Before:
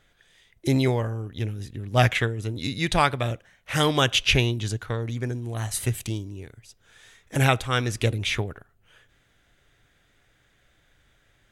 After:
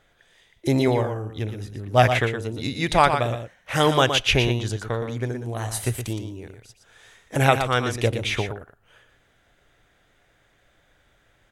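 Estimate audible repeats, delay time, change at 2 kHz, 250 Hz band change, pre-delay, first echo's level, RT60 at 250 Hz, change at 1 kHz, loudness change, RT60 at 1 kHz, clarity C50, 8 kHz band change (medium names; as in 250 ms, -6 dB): 1, 118 ms, +1.5 dB, +1.5 dB, no reverb, -8.0 dB, no reverb, +5.0 dB, +2.0 dB, no reverb, no reverb, 0.0 dB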